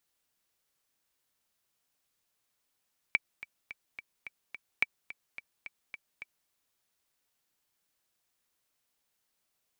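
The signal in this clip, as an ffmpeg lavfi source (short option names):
-f lavfi -i "aevalsrc='pow(10,(-11.5-17*gte(mod(t,6*60/215),60/215))/20)*sin(2*PI*2310*mod(t,60/215))*exp(-6.91*mod(t,60/215)/0.03)':d=3.34:s=44100"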